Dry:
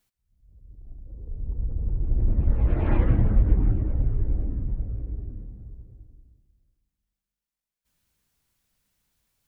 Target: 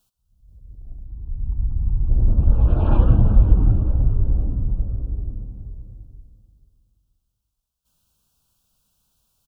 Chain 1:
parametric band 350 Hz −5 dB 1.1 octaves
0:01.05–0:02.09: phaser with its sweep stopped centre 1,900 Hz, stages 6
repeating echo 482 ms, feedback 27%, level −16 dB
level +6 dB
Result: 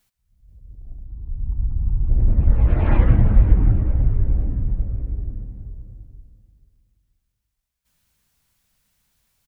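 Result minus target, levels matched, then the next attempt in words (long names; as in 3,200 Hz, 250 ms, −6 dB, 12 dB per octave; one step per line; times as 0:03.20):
2,000 Hz band +10.0 dB
Butterworth band-reject 2,000 Hz, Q 1.4
parametric band 350 Hz −5 dB 1.1 octaves
0:01.05–0:02.09: phaser with its sweep stopped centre 1,900 Hz, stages 6
repeating echo 482 ms, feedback 27%, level −16 dB
level +6 dB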